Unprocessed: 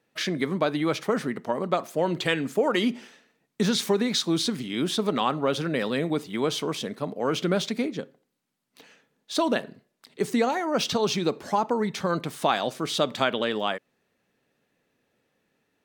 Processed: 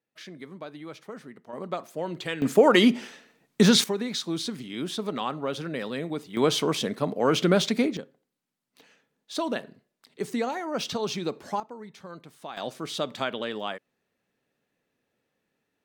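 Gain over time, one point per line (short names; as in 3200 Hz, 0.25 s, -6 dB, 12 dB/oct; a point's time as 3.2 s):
-15.5 dB
from 1.53 s -7 dB
from 2.42 s +6 dB
from 3.84 s -5.5 dB
from 6.37 s +3.5 dB
from 7.97 s -5 dB
from 11.6 s -16.5 dB
from 12.57 s -5.5 dB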